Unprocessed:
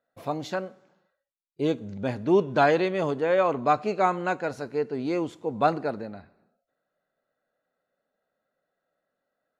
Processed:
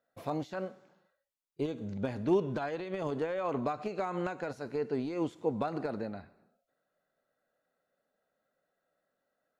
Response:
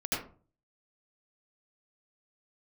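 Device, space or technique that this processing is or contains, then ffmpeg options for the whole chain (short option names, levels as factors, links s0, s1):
de-esser from a sidechain: -filter_complex "[0:a]asplit=2[s0][s1];[s1]highpass=5400,apad=whole_len=423351[s2];[s0][s2]sidechaincompress=threshold=0.00178:ratio=8:attack=0.92:release=84,volume=0.891"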